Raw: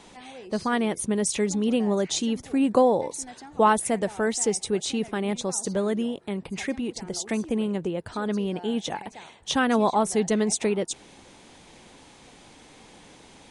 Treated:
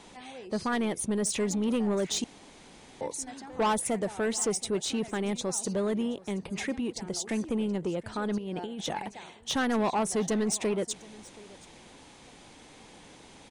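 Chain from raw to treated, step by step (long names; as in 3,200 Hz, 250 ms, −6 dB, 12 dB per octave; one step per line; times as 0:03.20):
0:08.38–0:09.06: compressor whose output falls as the input rises −33 dBFS, ratio −1
soft clipping −20.5 dBFS, distortion −11 dB
single-tap delay 726 ms −21.5 dB
0:02.24–0:03.01: fill with room tone
level −1.5 dB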